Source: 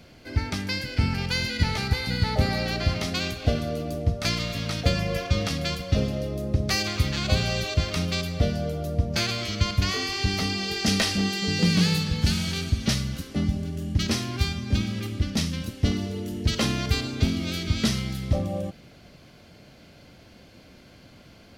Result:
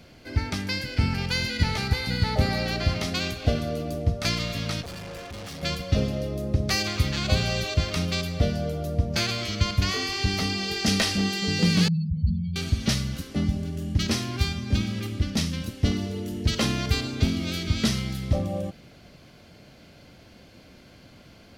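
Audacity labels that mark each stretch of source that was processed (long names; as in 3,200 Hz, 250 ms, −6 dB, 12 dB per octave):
4.820000	5.630000	tube saturation drive 36 dB, bias 0.7
11.880000	12.560000	expanding power law on the bin magnitudes exponent 3.6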